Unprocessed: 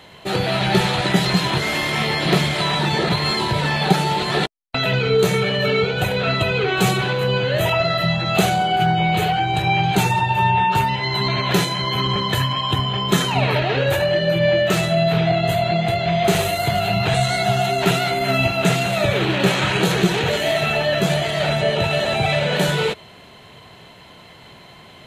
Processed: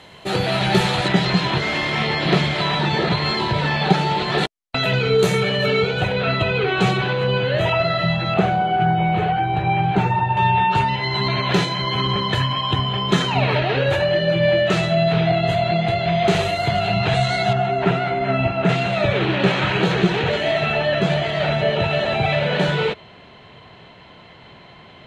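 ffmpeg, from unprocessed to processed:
-af "asetnsamples=n=441:p=0,asendcmd='1.08 lowpass f 4600;4.38 lowpass f 11000;6.01 lowpass f 4000;8.34 lowpass f 1900;10.37 lowpass f 5000;17.53 lowpass f 2000;18.69 lowpass f 3600',lowpass=11k"

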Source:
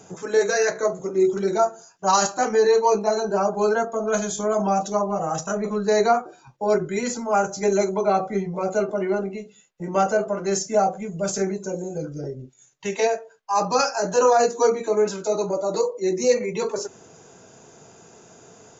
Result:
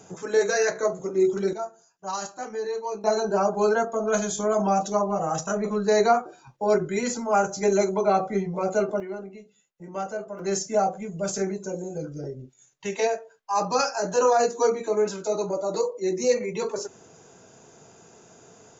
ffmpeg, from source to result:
-af "asetnsamples=n=441:p=0,asendcmd='1.53 volume volume -12.5dB;3.04 volume volume -1dB;9 volume volume -11dB;10.39 volume volume -3dB',volume=-2dB"

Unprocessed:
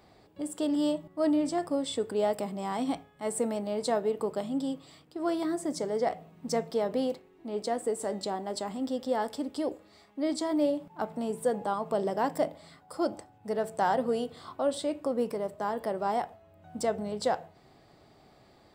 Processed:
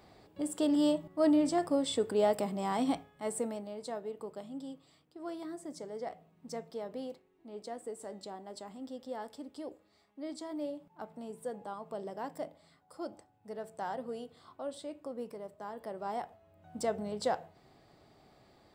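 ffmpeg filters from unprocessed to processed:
-af "volume=8dB,afade=t=out:st=2.87:d=0.88:silence=0.266073,afade=t=in:st=15.72:d=1.2:silence=0.398107"

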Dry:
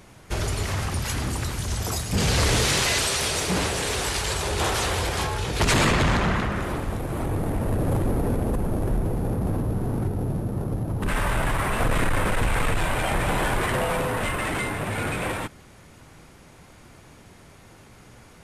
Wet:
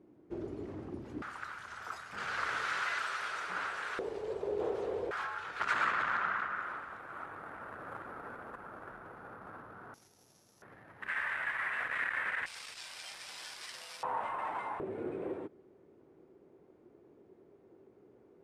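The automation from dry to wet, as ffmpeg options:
-af "asetnsamples=n=441:p=0,asendcmd='1.22 bandpass f 1400;3.99 bandpass f 440;5.11 bandpass f 1400;9.94 bandpass f 5900;10.62 bandpass f 1800;12.46 bandpass f 5100;14.03 bandpass f 920;14.8 bandpass f 380',bandpass=f=320:t=q:w=4.5:csg=0"

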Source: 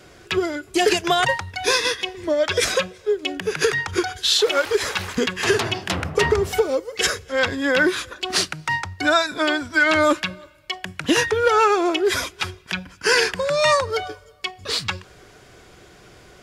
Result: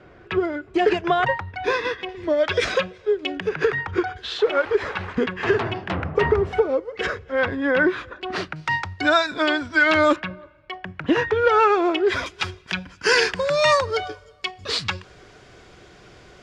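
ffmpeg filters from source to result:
-af "asetnsamples=n=441:p=0,asendcmd='2.09 lowpass f 3300;3.49 lowpass f 1900;8.56 lowpass f 4600;10.16 lowpass f 1800;11.31 lowpass f 3000;12.26 lowpass f 6100',lowpass=1.9k"

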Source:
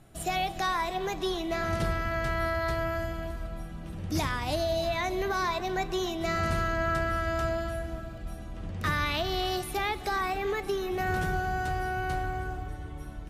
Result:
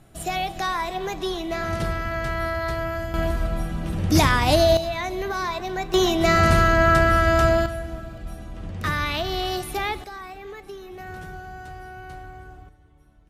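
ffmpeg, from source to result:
-af "asetnsamples=n=441:p=0,asendcmd='3.14 volume volume 12dB;4.77 volume volume 2dB;5.94 volume volume 11.5dB;7.66 volume volume 3.5dB;10.04 volume volume -8dB;12.69 volume volume -16dB',volume=3dB"

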